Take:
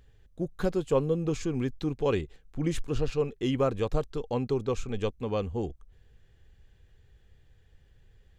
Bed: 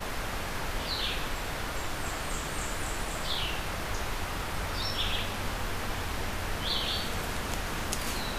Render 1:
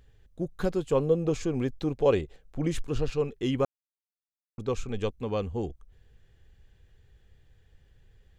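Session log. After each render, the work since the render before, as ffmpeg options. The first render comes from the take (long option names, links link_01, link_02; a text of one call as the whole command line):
ffmpeg -i in.wav -filter_complex "[0:a]asettb=1/sr,asplit=3[link_01][link_02][link_03];[link_01]atrim=end=0.994[link_04];[link_02]atrim=start=0.99:end=2.67,asetpts=PTS-STARTPTS,afade=type=in:duration=0.004:curve=qsin,afade=type=out:start_time=1.676:duration=0.004:curve=qsin,equalizer=frequency=600:width_type=o:width=0.77:gain=8[link_05];[link_03]atrim=start=2.666[link_06];[link_04][link_05]acrossfade=duration=0.004:curve1=hsin:curve2=qsin[link_07];[link_07][link_06]acrossfade=duration=0.004:curve1=qsin:curve2=hsin,asplit=3[link_08][link_09][link_10];[link_08]atrim=end=3.65,asetpts=PTS-STARTPTS,afade=type=out:start_time=3.646:duration=0.004:curve=hsin[link_11];[link_09]atrim=start=3.65:end=4.58,asetpts=PTS-STARTPTS,volume=0[link_12];[link_10]atrim=start=4.58,asetpts=PTS-STARTPTS,afade=type=in:duration=0.004:curve=hsin[link_13];[link_11][link_12][link_13]concat=n=3:v=0:a=1" out.wav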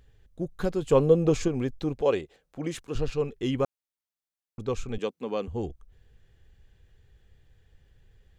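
ffmpeg -i in.wav -filter_complex "[0:a]asettb=1/sr,asplit=3[link_01][link_02][link_03];[link_01]atrim=end=2.014[link_04];[link_02]atrim=start=2.01:end=2.95,asetpts=PTS-STARTPTS,afade=type=in:duration=0.004:curve=qsin,afade=type=out:start_time=0.936:duration=0.004:curve=qsin,highpass=frequency=290:poles=1[link_05];[link_03]atrim=start=2.946[link_06];[link_04][link_05]acrossfade=duration=0.004:curve1=hsin:curve2=qsin[link_07];[link_07][link_06]acrossfade=duration=0.004:curve1=qsin:curve2=hsin,asettb=1/sr,asplit=3[link_08][link_09][link_10];[link_08]atrim=end=4.984[link_11];[link_09]atrim=start=4.98:end=5.48,asetpts=PTS-STARTPTS,afade=type=in:duration=0.004:curve=qsin,afade=type=out:start_time=0.496:duration=0.004:curve=qsin,highpass=frequency=190:width=0.5412,highpass=frequency=190:width=1.3066[link_12];[link_10]atrim=start=5.476[link_13];[link_11][link_12]acrossfade=duration=0.004:curve1=hsin:curve2=qsin[link_14];[link_14][link_13]acrossfade=duration=0.004:curve1=qsin:curve2=hsin,asplit=3[link_15][link_16][link_17];[link_15]atrim=end=0.822[link_18];[link_16]atrim=start=0.818:end=1.482,asetpts=PTS-STARTPTS,volume=4.5dB[link_19];[link_17]atrim=start=1.478[link_20];[link_18][link_19]acrossfade=duration=0.004:curve1=hsin:curve2=hsin[link_21];[link_21][link_20]acrossfade=duration=0.004:curve1=hsin:curve2=hsin" out.wav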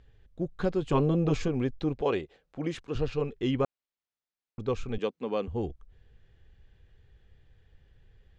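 ffmpeg -i in.wav -af "lowpass=4500,afftfilt=real='re*lt(hypot(re,im),0.794)':imag='im*lt(hypot(re,im),0.794)':win_size=1024:overlap=0.75" out.wav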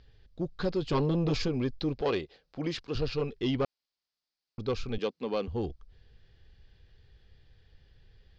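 ffmpeg -i in.wav -af "asoftclip=type=tanh:threshold=-20.5dB,lowpass=frequency=4800:width_type=q:width=4.5" out.wav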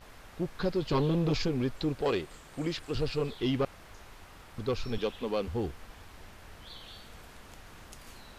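ffmpeg -i in.wav -i bed.wav -filter_complex "[1:a]volume=-17.5dB[link_01];[0:a][link_01]amix=inputs=2:normalize=0" out.wav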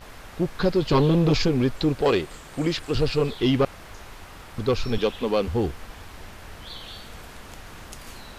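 ffmpeg -i in.wav -af "volume=8.5dB" out.wav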